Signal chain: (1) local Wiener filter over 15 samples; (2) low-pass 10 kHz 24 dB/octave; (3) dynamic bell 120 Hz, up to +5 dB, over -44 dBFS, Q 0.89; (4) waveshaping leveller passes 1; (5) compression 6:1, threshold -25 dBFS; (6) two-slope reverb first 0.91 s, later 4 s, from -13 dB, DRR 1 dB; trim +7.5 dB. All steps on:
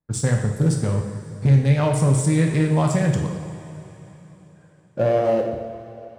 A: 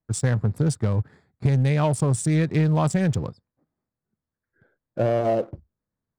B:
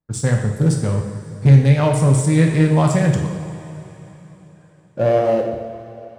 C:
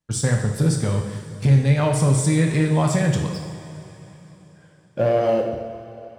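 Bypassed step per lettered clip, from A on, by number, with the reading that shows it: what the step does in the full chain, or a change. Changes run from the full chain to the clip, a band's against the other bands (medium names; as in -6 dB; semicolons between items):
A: 6, momentary loudness spread change -8 LU; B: 5, mean gain reduction 2.5 dB; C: 1, 4 kHz band +3.5 dB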